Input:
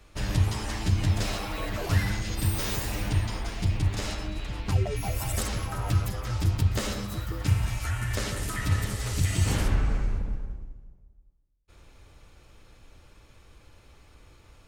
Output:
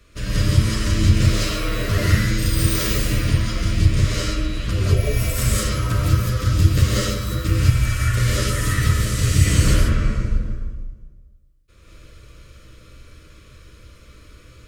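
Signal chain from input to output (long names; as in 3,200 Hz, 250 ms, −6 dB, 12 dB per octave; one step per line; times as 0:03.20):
Butterworth band-reject 810 Hz, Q 2
reverb whose tail is shaped and stops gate 230 ms rising, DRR −6 dB
level +1.5 dB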